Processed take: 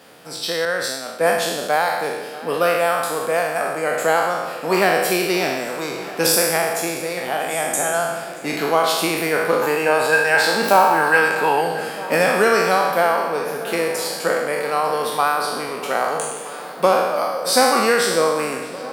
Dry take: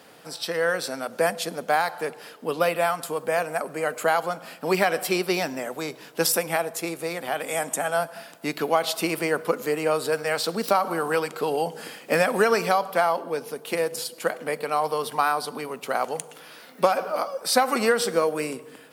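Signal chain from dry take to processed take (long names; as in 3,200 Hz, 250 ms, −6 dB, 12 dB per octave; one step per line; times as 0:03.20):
peak hold with a decay on every bin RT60 1.21 s
0:09.62–0:11.61: hollow resonant body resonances 870/1,600/2,600 Hz, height 15 dB, ringing for 35 ms
on a send: feedback echo with a low-pass in the loop 633 ms, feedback 83%, low-pass 4,700 Hz, level −17.5 dB
0:00.65–0:01.38: on the sum: multiband upward and downward expander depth 70%
level +1.5 dB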